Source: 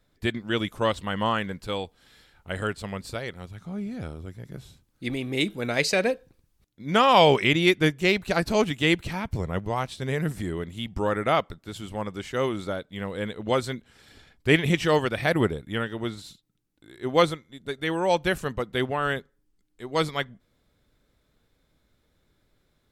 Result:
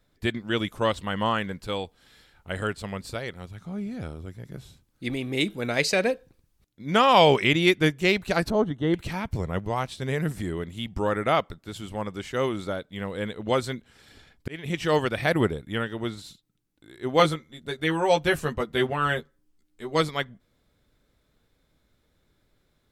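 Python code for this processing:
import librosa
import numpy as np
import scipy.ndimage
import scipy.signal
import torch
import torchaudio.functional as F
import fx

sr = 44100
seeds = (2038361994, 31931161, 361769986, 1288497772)

y = fx.moving_average(x, sr, points=18, at=(8.5, 8.94))
y = fx.doubler(y, sr, ms=13.0, db=-3.0, at=(17.18, 20.01))
y = fx.edit(y, sr, fx.fade_in_span(start_s=14.48, length_s=0.51), tone=tone)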